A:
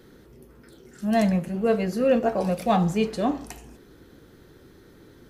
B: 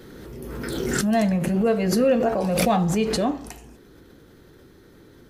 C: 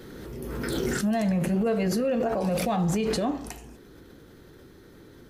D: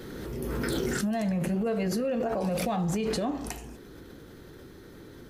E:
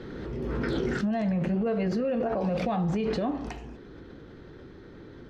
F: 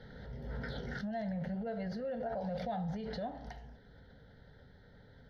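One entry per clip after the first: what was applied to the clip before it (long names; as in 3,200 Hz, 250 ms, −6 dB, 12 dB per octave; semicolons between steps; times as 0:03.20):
background raised ahead of every attack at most 23 dB per second
brickwall limiter −18.5 dBFS, peak gain reduction 10 dB
downward compressor, threshold −28 dBFS, peak gain reduction 6.5 dB; level +2.5 dB
high-frequency loss of the air 200 metres; level +1.5 dB
phaser with its sweep stopped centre 1,700 Hz, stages 8; level −7 dB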